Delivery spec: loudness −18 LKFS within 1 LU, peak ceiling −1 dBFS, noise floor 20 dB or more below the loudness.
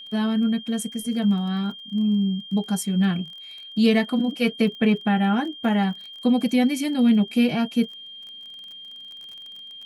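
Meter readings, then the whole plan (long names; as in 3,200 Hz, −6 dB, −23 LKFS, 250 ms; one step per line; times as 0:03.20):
crackle rate 26 per second; interfering tone 3,200 Hz; level of the tone −38 dBFS; integrated loudness −22.5 LKFS; sample peak −8.0 dBFS; target loudness −18.0 LKFS
→ click removal
notch filter 3,200 Hz, Q 30
level +4.5 dB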